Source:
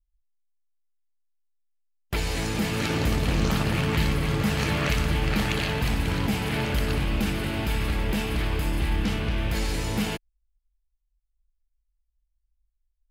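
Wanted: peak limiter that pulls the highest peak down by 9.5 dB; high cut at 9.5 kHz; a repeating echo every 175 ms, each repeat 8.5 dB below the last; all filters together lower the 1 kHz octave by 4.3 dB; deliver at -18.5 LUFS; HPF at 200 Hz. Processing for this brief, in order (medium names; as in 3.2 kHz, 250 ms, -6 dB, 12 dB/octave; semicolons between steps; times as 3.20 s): high-pass 200 Hz; low-pass 9.5 kHz; peaking EQ 1 kHz -5.5 dB; peak limiter -22.5 dBFS; feedback delay 175 ms, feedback 38%, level -8.5 dB; trim +13 dB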